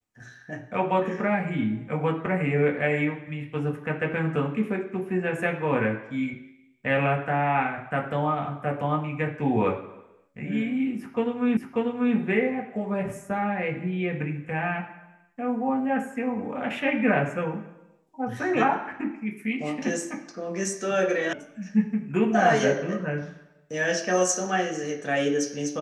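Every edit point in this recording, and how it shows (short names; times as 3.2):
11.57 repeat of the last 0.59 s
21.33 sound cut off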